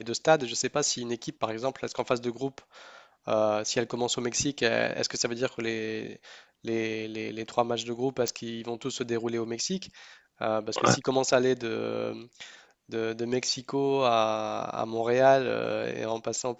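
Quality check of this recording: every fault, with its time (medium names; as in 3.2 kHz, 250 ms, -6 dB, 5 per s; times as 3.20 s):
1.24 s: dropout 3.8 ms
8.28 s: pop -14 dBFS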